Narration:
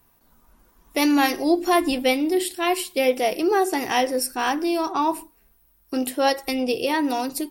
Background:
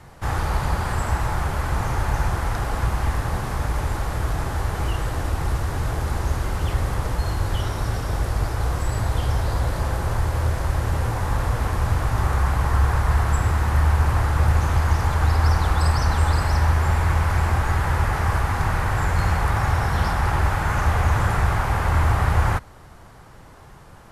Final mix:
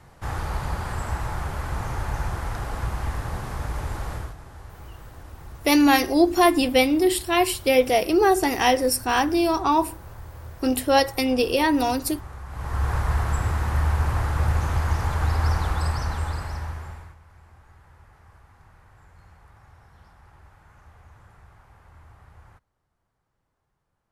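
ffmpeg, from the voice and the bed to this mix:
ffmpeg -i stem1.wav -i stem2.wav -filter_complex "[0:a]adelay=4700,volume=2dB[link_01];[1:a]volume=8.5dB,afade=type=out:start_time=4.13:duration=0.22:silence=0.237137,afade=type=in:start_time=12.48:duration=0.46:silence=0.199526,afade=type=out:start_time=15.55:duration=1.61:silence=0.0421697[link_02];[link_01][link_02]amix=inputs=2:normalize=0" out.wav

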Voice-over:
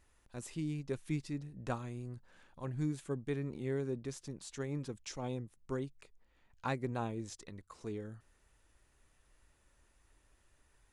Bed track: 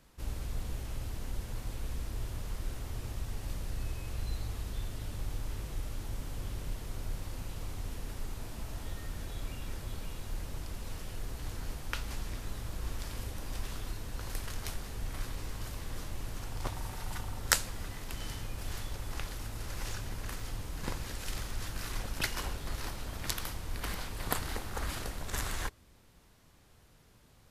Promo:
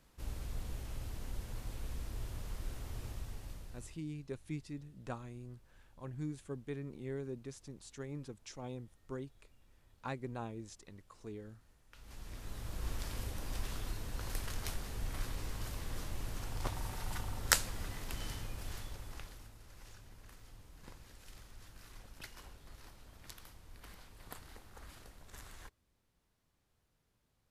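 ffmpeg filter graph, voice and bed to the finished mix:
ffmpeg -i stem1.wav -i stem2.wav -filter_complex "[0:a]adelay=3400,volume=-5dB[link_01];[1:a]volume=21.5dB,afade=type=out:start_time=3.05:duration=0.99:silence=0.0707946,afade=type=in:start_time=11.91:duration=0.99:silence=0.0501187,afade=type=out:start_time=18.11:duration=1.47:silence=0.16788[link_02];[link_01][link_02]amix=inputs=2:normalize=0" out.wav

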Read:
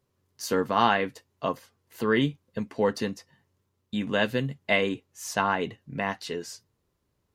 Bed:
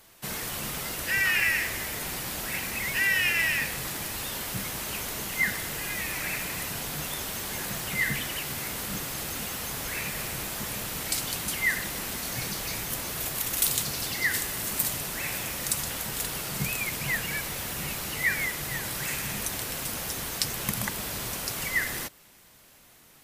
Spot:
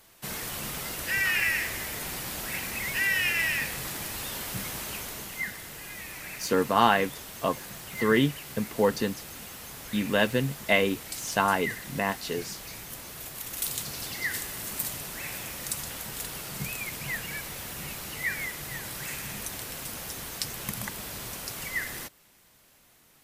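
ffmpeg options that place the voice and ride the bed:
ffmpeg -i stem1.wav -i stem2.wav -filter_complex "[0:a]adelay=6000,volume=1dB[link_01];[1:a]volume=2.5dB,afade=type=out:start_time=4.76:duration=0.76:silence=0.446684,afade=type=in:start_time=13.34:duration=0.67:silence=0.630957[link_02];[link_01][link_02]amix=inputs=2:normalize=0" out.wav

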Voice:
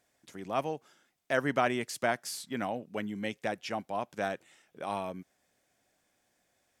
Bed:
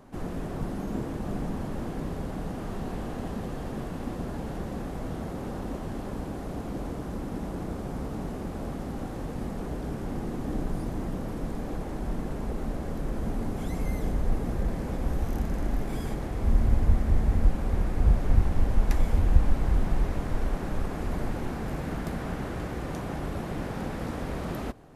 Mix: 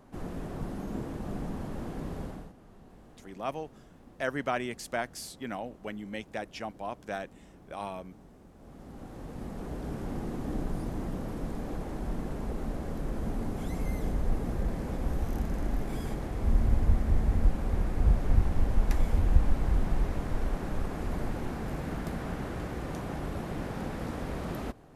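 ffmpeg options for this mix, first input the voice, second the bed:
ffmpeg -i stem1.wav -i stem2.wav -filter_complex "[0:a]adelay=2900,volume=-3dB[link_01];[1:a]volume=13.5dB,afade=type=out:start_time=2.23:duration=0.3:silence=0.158489,afade=type=in:start_time=8.57:duration=1.41:silence=0.133352[link_02];[link_01][link_02]amix=inputs=2:normalize=0" out.wav

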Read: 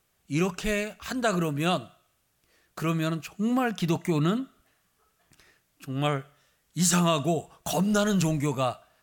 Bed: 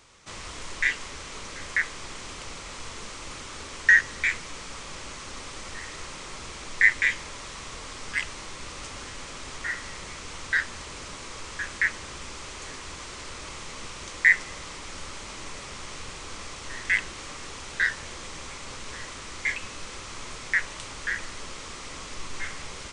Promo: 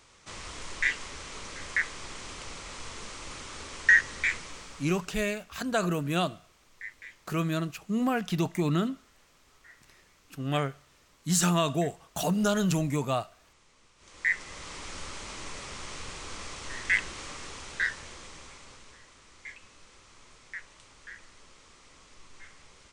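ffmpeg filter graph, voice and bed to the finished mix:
ffmpeg -i stem1.wav -i stem2.wav -filter_complex "[0:a]adelay=4500,volume=-2dB[link_01];[1:a]volume=19.5dB,afade=type=out:start_time=4.34:duration=0.82:silence=0.0891251,afade=type=in:start_time=13.97:duration=0.84:silence=0.0794328,afade=type=out:start_time=17.21:duration=1.8:silence=0.177828[link_02];[link_01][link_02]amix=inputs=2:normalize=0" out.wav

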